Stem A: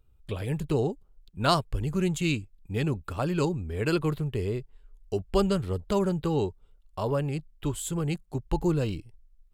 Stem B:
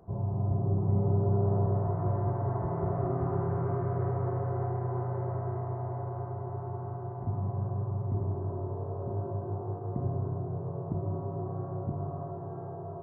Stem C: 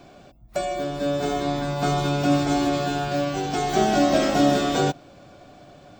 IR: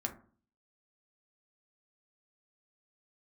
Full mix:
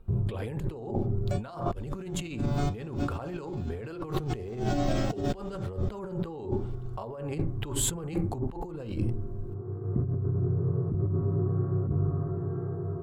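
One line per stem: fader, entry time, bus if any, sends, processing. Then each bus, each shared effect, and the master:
-1.0 dB, 0.00 s, bus A, send -5.5 dB, no echo send, peaking EQ 710 Hz +10.5 dB 2.7 oct
-2.0 dB, 0.00 s, bus A, send -14.5 dB, no echo send, high-order bell 750 Hz -14 dB 1.1 oct; auto duck -19 dB, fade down 0.95 s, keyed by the first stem
-18.0 dB, 0.75 s, no bus, no send, echo send -17.5 dB, bass shelf 300 Hz +5.5 dB
bus A: 0.0 dB, gate with hold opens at -46 dBFS; compression, threshold -23 dBFS, peak gain reduction 12.5 dB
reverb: on, RT60 0.45 s, pre-delay 4 ms
echo: feedback delay 448 ms, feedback 38%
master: bass shelf 98 Hz +9 dB; band-stop 620 Hz, Q 19; compressor with a negative ratio -32 dBFS, ratio -1

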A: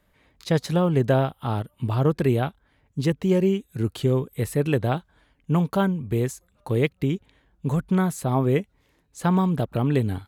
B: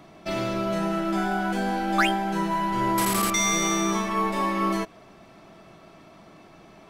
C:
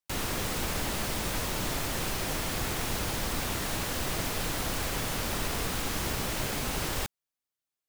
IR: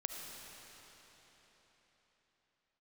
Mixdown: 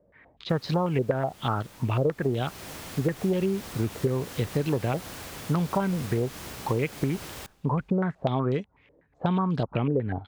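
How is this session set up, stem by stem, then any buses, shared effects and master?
+0.5 dB, 0.00 s, bus A, no send, de-esser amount 100%; step-sequenced low-pass 8.1 Hz 530–4600 Hz
mute
2.05 s -18.5 dB -> 2.70 s -8 dB, 0.40 s, bus A, send -21 dB, none
bus A: 0.0 dB, high-pass 59 Hz; compression 6:1, threshold -22 dBFS, peak gain reduction 12.5 dB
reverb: on, RT60 4.4 s, pre-delay 30 ms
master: none

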